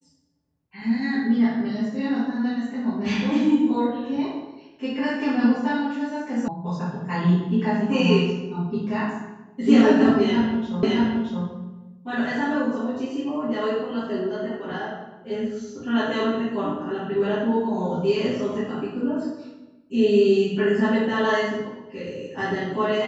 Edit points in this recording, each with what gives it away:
0:06.48: cut off before it has died away
0:10.83: the same again, the last 0.62 s

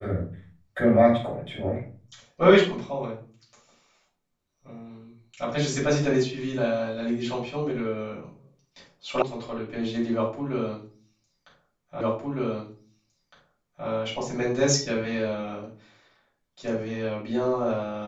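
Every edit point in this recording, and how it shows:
0:09.22: cut off before it has died away
0:12.01: the same again, the last 1.86 s

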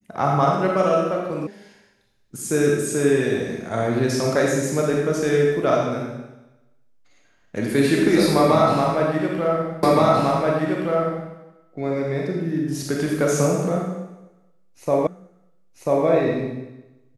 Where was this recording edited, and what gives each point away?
0:01.47: cut off before it has died away
0:09.83: the same again, the last 1.47 s
0:15.07: the same again, the last 0.99 s

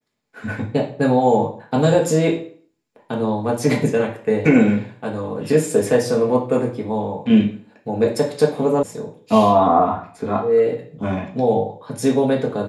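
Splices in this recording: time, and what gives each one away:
0:08.83: cut off before it has died away

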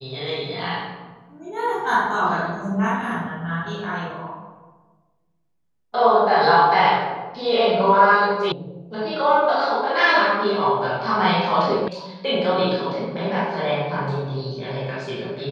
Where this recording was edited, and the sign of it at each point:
0:08.52: cut off before it has died away
0:11.88: cut off before it has died away

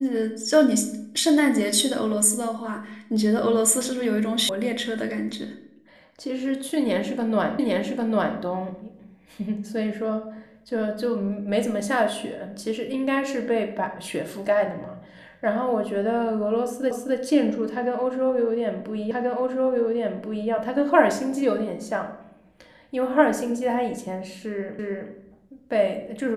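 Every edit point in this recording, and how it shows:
0:04.49: cut off before it has died away
0:07.59: the same again, the last 0.8 s
0:16.91: the same again, the last 0.26 s
0:19.11: the same again, the last 1.38 s
0:24.79: the same again, the last 0.32 s

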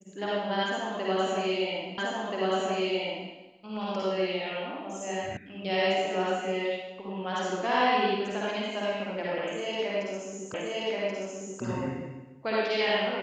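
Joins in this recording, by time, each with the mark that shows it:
0:01.98: the same again, the last 1.33 s
0:05.37: cut off before it has died away
0:10.54: the same again, the last 1.08 s

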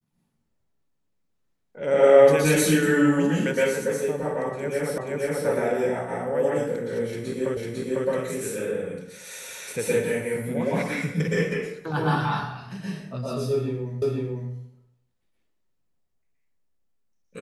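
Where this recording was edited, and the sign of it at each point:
0:04.98: the same again, the last 0.48 s
0:07.57: the same again, the last 0.5 s
0:14.02: the same again, the last 0.5 s

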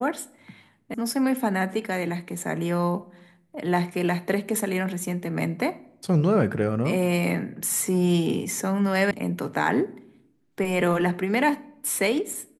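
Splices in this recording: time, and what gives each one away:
0:00.94: cut off before it has died away
0:09.11: cut off before it has died away

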